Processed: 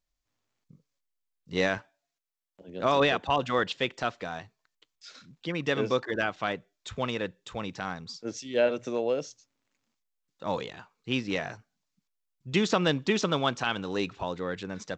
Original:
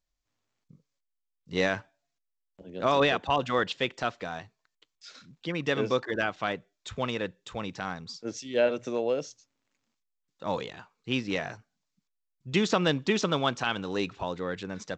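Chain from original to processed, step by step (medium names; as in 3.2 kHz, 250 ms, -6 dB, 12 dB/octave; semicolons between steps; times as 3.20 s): 1.78–2.68 s: bass shelf 170 Hz -10.5 dB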